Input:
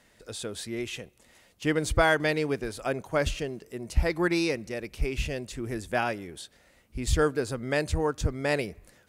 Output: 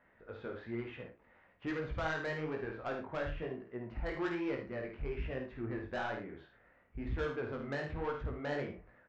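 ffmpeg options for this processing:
ffmpeg -i in.wav -af "lowpass=frequency=1700:width=0.5412,lowpass=frequency=1700:width=1.3066,tiltshelf=frequency=970:gain=-5,acompressor=threshold=-27dB:ratio=4,aresample=16000,asoftclip=type=tanh:threshold=-29dB,aresample=44100,flanger=delay=15:depth=6.6:speed=1.1,aecho=1:1:51|78|112:0.473|0.316|0.158" out.wav

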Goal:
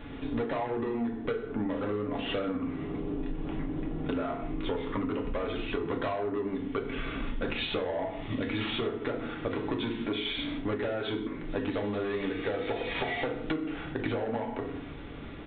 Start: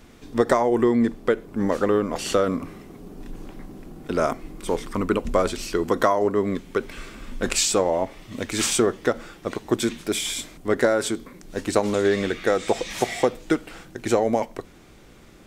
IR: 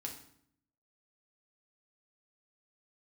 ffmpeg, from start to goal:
-filter_complex "[0:a]aresample=8000,asoftclip=type=tanh:threshold=-20dB,aresample=44100[link_01];[1:a]atrim=start_sample=2205,afade=type=out:start_time=0.26:duration=0.01,atrim=end_sample=11907[link_02];[link_01][link_02]afir=irnorm=-1:irlink=0,acompressor=threshold=-37dB:ratio=12,volume=8.5dB"

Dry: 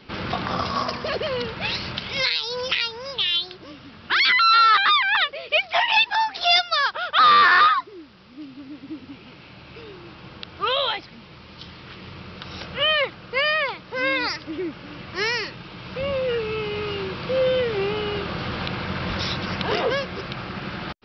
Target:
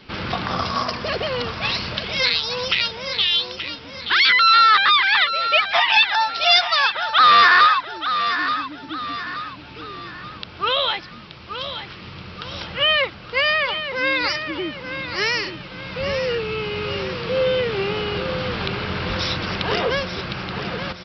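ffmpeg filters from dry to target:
ffmpeg -i in.wav -filter_complex "[0:a]equalizer=frequency=380:width=0.32:gain=-3,asplit=2[link_01][link_02];[link_02]aecho=0:1:877|1754|2631|3508|4385:0.335|0.141|0.0591|0.0248|0.0104[link_03];[link_01][link_03]amix=inputs=2:normalize=0,volume=3.5dB" out.wav

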